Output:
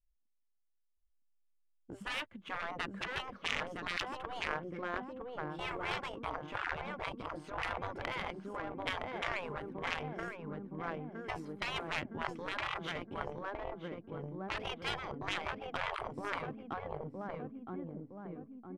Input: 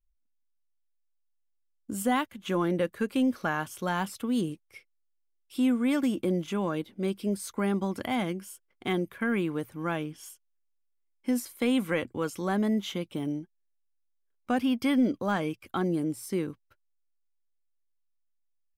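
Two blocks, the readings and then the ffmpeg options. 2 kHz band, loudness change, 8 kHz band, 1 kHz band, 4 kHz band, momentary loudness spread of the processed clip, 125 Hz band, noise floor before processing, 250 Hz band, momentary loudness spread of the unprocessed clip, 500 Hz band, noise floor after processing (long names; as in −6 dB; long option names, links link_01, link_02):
−1.5 dB, −10.0 dB, −14.0 dB, −4.0 dB, −1.5 dB, 7 LU, −10.0 dB, −74 dBFS, −17.5 dB, 9 LU, −9.5 dB, −77 dBFS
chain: -filter_complex "[0:a]asplit=2[link_01][link_02];[link_02]adelay=964,lowpass=frequency=1900:poles=1,volume=-3dB,asplit=2[link_03][link_04];[link_04]adelay=964,lowpass=frequency=1900:poles=1,volume=0.5,asplit=2[link_05][link_06];[link_06]adelay=964,lowpass=frequency=1900:poles=1,volume=0.5,asplit=2[link_07][link_08];[link_08]adelay=964,lowpass=frequency=1900:poles=1,volume=0.5,asplit=2[link_09][link_10];[link_10]adelay=964,lowpass=frequency=1900:poles=1,volume=0.5,asplit=2[link_11][link_12];[link_12]adelay=964,lowpass=frequency=1900:poles=1,volume=0.5,asplit=2[link_13][link_14];[link_14]adelay=964,lowpass=frequency=1900:poles=1,volume=0.5[link_15];[link_01][link_03][link_05][link_07][link_09][link_11][link_13][link_15]amix=inputs=8:normalize=0,adynamicsmooth=sensitivity=2:basefreq=1900,aeval=exprs='0.224*(cos(1*acos(clip(val(0)/0.224,-1,1)))-cos(1*PI/2))+0.0794*(cos(3*acos(clip(val(0)/0.224,-1,1)))-cos(3*PI/2))+0.00891*(cos(5*acos(clip(val(0)/0.224,-1,1)))-cos(5*PI/2))':channel_layout=same,afftfilt=real='re*lt(hypot(re,im),0.02)':imag='im*lt(hypot(re,im),0.02)':win_size=1024:overlap=0.75,volume=13.5dB"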